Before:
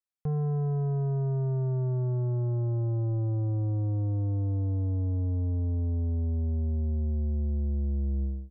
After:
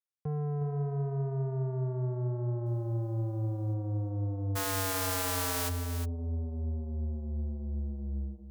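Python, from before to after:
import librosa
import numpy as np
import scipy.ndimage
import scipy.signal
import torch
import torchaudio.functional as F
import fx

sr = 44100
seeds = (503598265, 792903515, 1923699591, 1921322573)

p1 = fx.envelope_flatten(x, sr, power=0.1, at=(4.55, 5.68), fade=0.02)
p2 = scipy.signal.sosfilt(scipy.signal.butter(4, 63.0, 'highpass', fs=sr, output='sos'), p1)
p3 = fx.cheby_harmonics(p2, sr, harmonics=(7,), levels_db=(-26,), full_scale_db=-14.0)
p4 = fx.quant_dither(p3, sr, seeds[0], bits=12, dither='triangular', at=(2.66, 3.74))
p5 = p4 + fx.echo_single(p4, sr, ms=360, db=-10.0, dry=0)
y = F.gain(torch.from_numpy(p5), -3.5).numpy()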